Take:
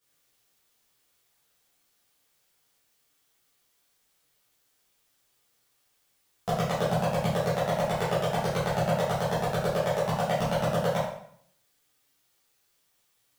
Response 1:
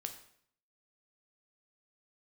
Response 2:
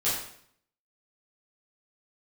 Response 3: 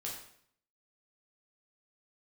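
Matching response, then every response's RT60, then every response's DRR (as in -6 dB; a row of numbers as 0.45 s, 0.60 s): 2; 0.60 s, 0.60 s, 0.60 s; 5.5 dB, -11.0 dB, -4.0 dB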